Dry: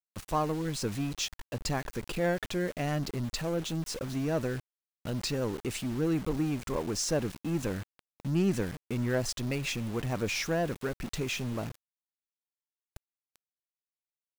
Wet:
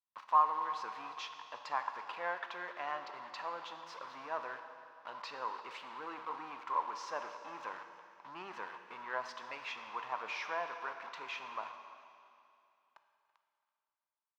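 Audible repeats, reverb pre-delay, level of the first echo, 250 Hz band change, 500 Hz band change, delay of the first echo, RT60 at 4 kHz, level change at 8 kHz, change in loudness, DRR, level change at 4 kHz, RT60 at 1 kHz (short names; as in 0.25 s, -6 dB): 2, 12 ms, -20.0 dB, -26.5 dB, -13.5 dB, 0.332 s, 2.6 s, -22.5 dB, -7.5 dB, 6.5 dB, -11.5 dB, 2.5 s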